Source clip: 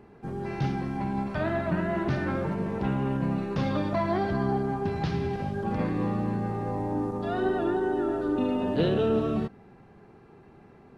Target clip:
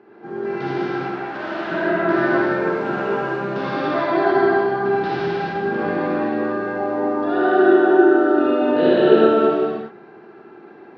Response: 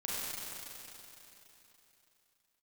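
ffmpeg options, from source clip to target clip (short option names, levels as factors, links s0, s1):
-filter_complex "[0:a]asettb=1/sr,asplit=3[s0][s1][s2];[s0]atrim=end=0.874[s3];[s1]atrim=start=0.87:end=1.67,asetpts=PTS-STARTPTS,afade=t=in:d=0.004:c=qsin,afade=t=out:st=0.796:d=0.004:c=qsin,asoftclip=type=hard:threshold=0.0211[s4];[s2]atrim=start=1.666[s5];[s3][s4]acrossfade=d=0.004:c1=hsin:c2=qsin[s6];[s6][s5]acrossfade=d=0.004:c1=qsin:c2=hsin,asettb=1/sr,asplit=3[s7][s8][s9];[s7]atrim=end=2.514[s10];[s8]atrim=start=2.51:end=3.32,asetpts=PTS-STARTPTS,afade=t=in:d=0.004:c=qsin,afade=t=out:st=0.806:d=0.004:c=qsin,acrusher=bits=7:mix=0:aa=0.5[s11];[s9]atrim=start=3.316[s12];[s10][s11]acrossfade=d=0.004:c1=hsin:c2=qsin[s13];[s13][s12]acrossfade=d=0.004:c1=qsin:c2=hsin,highpass=270,equalizer=f=360:t=q:w=4:g=9,equalizer=f=740:t=q:w=4:g=3,equalizer=f=1500:t=q:w=4:g=9,lowpass=f=4900:w=0.5412,lowpass=f=4900:w=1.3066[s14];[1:a]atrim=start_sample=2205,afade=t=out:st=0.32:d=0.01,atrim=end_sample=14553,asetrate=27342,aresample=44100[s15];[s14][s15]afir=irnorm=-1:irlink=0,volume=1.19"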